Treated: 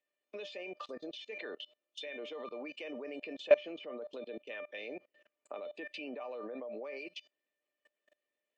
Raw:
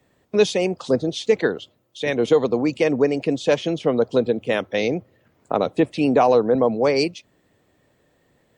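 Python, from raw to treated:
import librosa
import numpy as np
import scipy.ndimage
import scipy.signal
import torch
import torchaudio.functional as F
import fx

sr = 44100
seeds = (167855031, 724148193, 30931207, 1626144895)

y = scipy.signal.sosfilt(scipy.signal.butter(4, 280.0, 'highpass', fs=sr, output='sos'), x)
y = fx.peak_eq(y, sr, hz=2600.0, db=11.0, octaves=0.76)
y = fx.comb_fb(y, sr, f0_hz=600.0, decay_s=0.18, harmonics='all', damping=0.0, mix_pct=90)
y = fx.level_steps(y, sr, step_db=24)
y = fx.env_lowpass_down(y, sr, base_hz=2000.0, full_db=-43.5)
y = y * librosa.db_to_amplitude(6.0)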